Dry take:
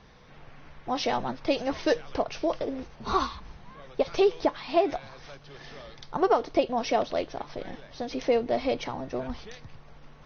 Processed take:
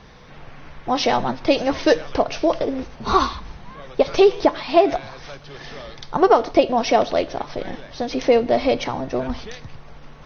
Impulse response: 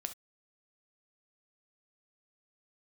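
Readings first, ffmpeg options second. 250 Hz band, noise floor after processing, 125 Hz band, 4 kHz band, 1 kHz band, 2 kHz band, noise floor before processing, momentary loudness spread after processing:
+8.5 dB, -43 dBFS, +8.5 dB, +8.5 dB, +8.5 dB, +8.5 dB, -51 dBFS, 21 LU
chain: -filter_complex "[0:a]asplit=2[s0][s1];[1:a]atrim=start_sample=2205,asetrate=22050,aresample=44100[s2];[s1][s2]afir=irnorm=-1:irlink=0,volume=0.224[s3];[s0][s3]amix=inputs=2:normalize=0,volume=2.11"

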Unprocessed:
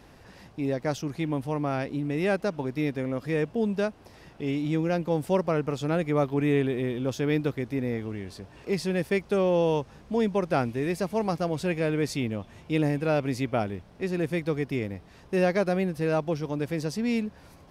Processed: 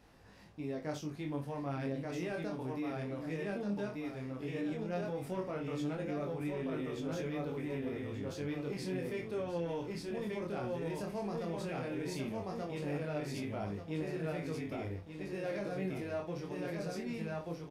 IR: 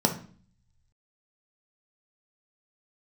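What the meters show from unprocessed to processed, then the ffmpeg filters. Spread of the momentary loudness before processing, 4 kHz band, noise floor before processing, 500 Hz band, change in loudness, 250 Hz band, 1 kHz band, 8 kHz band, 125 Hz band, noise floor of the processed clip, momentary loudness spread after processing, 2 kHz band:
7 LU, -10.0 dB, -52 dBFS, -11.5 dB, -11.0 dB, -10.5 dB, -11.5 dB, -9.0 dB, -10.5 dB, -48 dBFS, 3 LU, -11.0 dB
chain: -filter_complex "[0:a]asplit=2[s0][s1];[s1]aecho=0:1:30|64:0.398|0.2[s2];[s0][s2]amix=inputs=2:normalize=0,asoftclip=type=tanh:threshold=0.178,asplit=2[s3][s4];[s4]aecho=0:1:1183|2366|3549|4732:0.708|0.227|0.0725|0.0232[s5];[s3][s5]amix=inputs=2:normalize=0,alimiter=limit=0.0891:level=0:latency=1:release=30,flanger=delay=19:depth=5.5:speed=0.14,volume=0.447"

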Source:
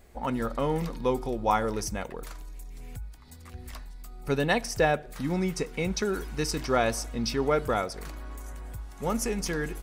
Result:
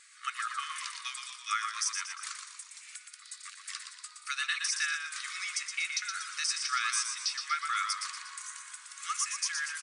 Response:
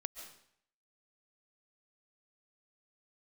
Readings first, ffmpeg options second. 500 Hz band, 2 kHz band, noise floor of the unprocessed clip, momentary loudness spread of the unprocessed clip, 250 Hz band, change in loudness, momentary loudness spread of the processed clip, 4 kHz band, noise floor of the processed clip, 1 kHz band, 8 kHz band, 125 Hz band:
under -40 dB, +1.0 dB, -47 dBFS, 18 LU, under -40 dB, -4.5 dB, 15 LU, +4.0 dB, -53 dBFS, -5.5 dB, +5.0 dB, under -40 dB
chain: -filter_complex "[0:a]tiltshelf=f=1500:g=-7,afftfilt=real='re*between(b*sr/4096,1100,10000)':imag='im*between(b*sr/4096,1100,10000)':win_size=4096:overlap=0.75,equalizer=f=3100:t=o:w=0.61:g=-2.5,asplit=2[s0][s1];[s1]acompressor=threshold=0.00891:ratio=8,volume=0.75[s2];[s0][s2]amix=inputs=2:normalize=0,alimiter=limit=0.1:level=0:latency=1:release=241,asplit=7[s3][s4][s5][s6][s7][s8][s9];[s4]adelay=119,afreqshift=-56,volume=0.501[s10];[s5]adelay=238,afreqshift=-112,volume=0.234[s11];[s6]adelay=357,afreqshift=-168,volume=0.111[s12];[s7]adelay=476,afreqshift=-224,volume=0.0519[s13];[s8]adelay=595,afreqshift=-280,volume=0.0245[s14];[s9]adelay=714,afreqshift=-336,volume=0.0115[s15];[s3][s10][s11][s12][s13][s14][s15]amix=inputs=7:normalize=0"

